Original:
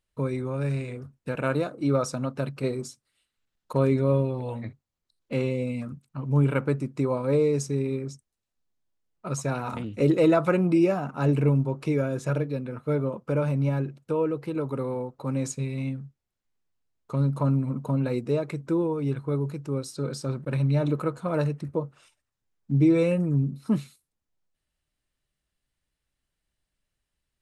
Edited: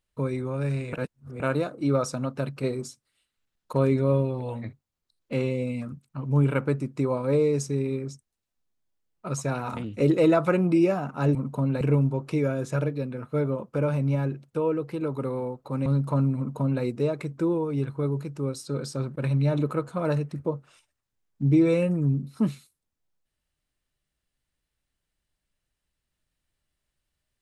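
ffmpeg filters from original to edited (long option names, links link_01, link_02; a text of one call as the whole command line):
ffmpeg -i in.wav -filter_complex "[0:a]asplit=6[link_01][link_02][link_03][link_04][link_05][link_06];[link_01]atrim=end=0.932[link_07];[link_02]atrim=start=0.928:end=1.402,asetpts=PTS-STARTPTS,areverse[link_08];[link_03]atrim=start=1.398:end=11.352[link_09];[link_04]atrim=start=17.658:end=18.122[link_10];[link_05]atrim=start=11.348:end=15.402[link_11];[link_06]atrim=start=17.148[link_12];[link_07][link_08]acrossfade=duration=0.004:curve1=hsin:curve2=hsin[link_13];[link_13][link_09]acrossfade=duration=0.004:curve1=hsin:curve2=hsin[link_14];[link_14][link_10]acrossfade=duration=0.004:curve1=hsin:curve2=hsin[link_15];[link_15][link_11]acrossfade=duration=0.004:curve1=hsin:curve2=hsin[link_16];[link_16][link_12]acrossfade=duration=0.004:curve1=hsin:curve2=hsin" out.wav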